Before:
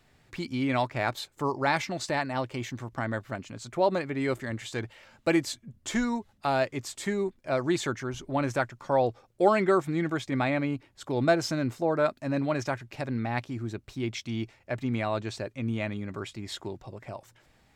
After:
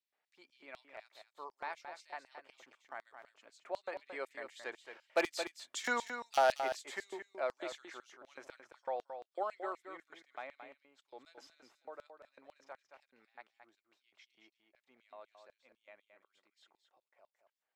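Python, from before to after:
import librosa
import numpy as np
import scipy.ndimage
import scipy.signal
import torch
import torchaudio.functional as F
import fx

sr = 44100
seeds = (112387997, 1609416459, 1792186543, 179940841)

y = fx.doppler_pass(x, sr, speed_mps=7, closest_m=3.1, pass_at_s=5.93)
y = fx.bass_treble(y, sr, bass_db=-11, treble_db=-11)
y = 10.0 ** (-23.0 / 20.0) * (np.abs((y / 10.0 ** (-23.0 / 20.0) + 3.0) % 4.0 - 2.0) - 1.0)
y = fx.filter_lfo_highpass(y, sr, shape='square', hz=4.0, low_hz=590.0, high_hz=4400.0, q=1.0)
y = y + 10.0 ** (-8.5 / 20.0) * np.pad(y, (int(222 * sr / 1000.0), 0))[:len(y)]
y = y * librosa.db_to_amplitude(3.5)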